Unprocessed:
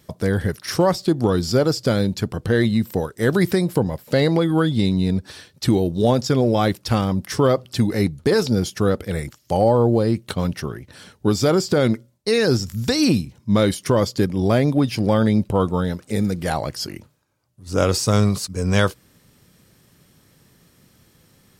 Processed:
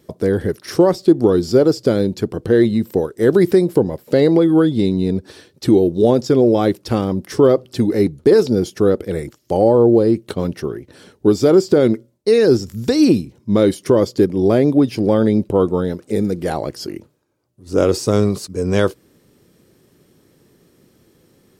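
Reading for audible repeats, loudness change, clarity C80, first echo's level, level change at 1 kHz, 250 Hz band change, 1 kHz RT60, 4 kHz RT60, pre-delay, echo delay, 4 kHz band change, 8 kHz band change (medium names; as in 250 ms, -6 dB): no echo, +4.0 dB, no reverb, no echo, -0.5 dB, +4.5 dB, no reverb, no reverb, no reverb, no echo, -3.5 dB, -3.5 dB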